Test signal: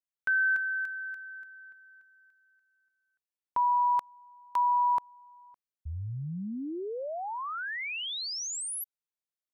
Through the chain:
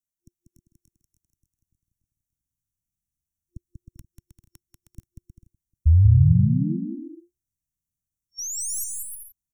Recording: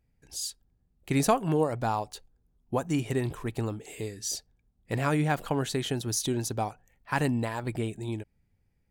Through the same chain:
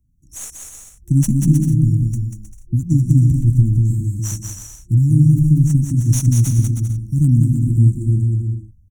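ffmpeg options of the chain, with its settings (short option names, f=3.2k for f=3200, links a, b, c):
-filter_complex "[0:a]afftfilt=real='re*(1-between(b*sr/4096,350,5500))':imag='im*(1-between(b*sr/4096,350,5500))':win_size=4096:overlap=0.75,bass=f=250:g=7,treble=f=4k:g=5,acrossover=split=140|5600[a][b][c];[a]dynaudnorm=f=670:g=3:m=15dB[d];[c]aeval=exprs='0.2*(cos(1*acos(clip(val(0)/0.2,-1,1)))-cos(1*PI/2))+0.0282*(cos(4*acos(clip(val(0)/0.2,-1,1)))-cos(4*PI/2))+0.0398*(cos(6*acos(clip(val(0)/0.2,-1,1)))-cos(6*PI/2))+0.00562*(cos(7*acos(clip(val(0)/0.2,-1,1)))-cos(7*PI/2))':c=same[e];[d][b][e]amix=inputs=3:normalize=0,aecho=1:1:190|313.5|393.8|446|479.9:0.631|0.398|0.251|0.158|0.1,volume=1dB"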